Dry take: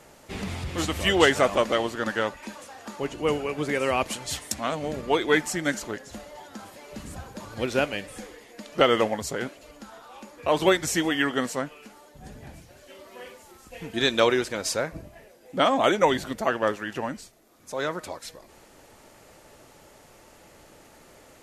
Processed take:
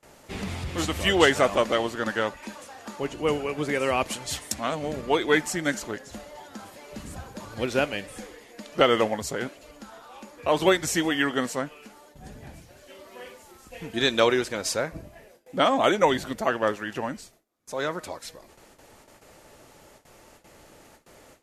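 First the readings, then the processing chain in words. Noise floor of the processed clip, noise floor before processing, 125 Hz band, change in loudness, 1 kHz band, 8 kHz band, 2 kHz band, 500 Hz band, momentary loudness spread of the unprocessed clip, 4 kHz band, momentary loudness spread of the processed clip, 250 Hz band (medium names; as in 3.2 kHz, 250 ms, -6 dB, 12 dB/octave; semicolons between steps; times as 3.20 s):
-55 dBFS, -53 dBFS, 0.0 dB, 0.0 dB, 0.0 dB, 0.0 dB, 0.0 dB, 0.0 dB, 21 LU, 0.0 dB, 21 LU, 0.0 dB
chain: gate with hold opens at -42 dBFS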